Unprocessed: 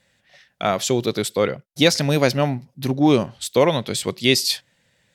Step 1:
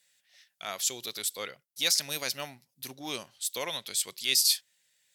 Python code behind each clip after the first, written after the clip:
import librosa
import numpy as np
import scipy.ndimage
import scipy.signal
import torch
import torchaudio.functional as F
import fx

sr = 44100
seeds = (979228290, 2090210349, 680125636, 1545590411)

y = librosa.effects.preemphasis(x, coef=0.97, zi=[0.0])
y = fx.transient(y, sr, attack_db=-6, sustain_db=-2)
y = y * 10.0 ** (2.0 / 20.0)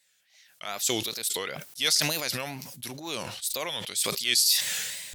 y = fx.wow_flutter(x, sr, seeds[0], rate_hz=2.1, depth_cents=150.0)
y = fx.sustainer(y, sr, db_per_s=36.0)
y = y * 10.0 ** (1.0 / 20.0)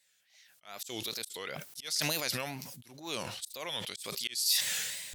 y = fx.auto_swell(x, sr, attack_ms=300.0)
y = y * 10.0 ** (-3.0 / 20.0)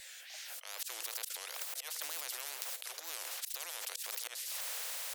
y = scipy.signal.sosfilt(scipy.signal.cheby1(6, 3, 490.0, 'highpass', fs=sr, output='sos'), x)
y = fx.spectral_comp(y, sr, ratio=10.0)
y = y * 10.0 ** (2.0 / 20.0)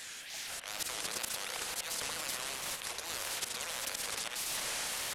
y = fx.cvsd(x, sr, bps=64000)
y = fx.rev_spring(y, sr, rt60_s=3.4, pass_ms=(33,), chirp_ms=40, drr_db=5.5)
y = fx.wow_flutter(y, sr, seeds[1], rate_hz=2.1, depth_cents=100.0)
y = y * 10.0 ** (4.5 / 20.0)